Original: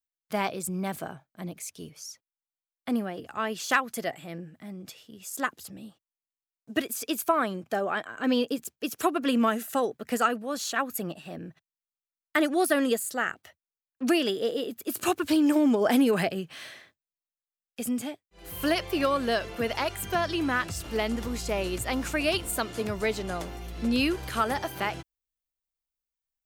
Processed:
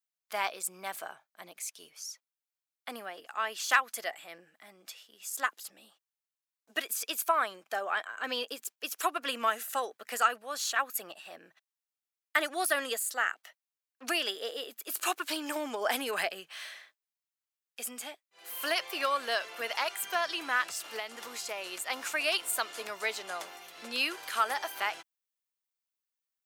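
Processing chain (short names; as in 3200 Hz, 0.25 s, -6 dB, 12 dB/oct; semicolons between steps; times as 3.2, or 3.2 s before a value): HPF 840 Hz 12 dB/oct; 20.89–21.9 compressor 5:1, threshold -34 dBFS, peak gain reduction 7 dB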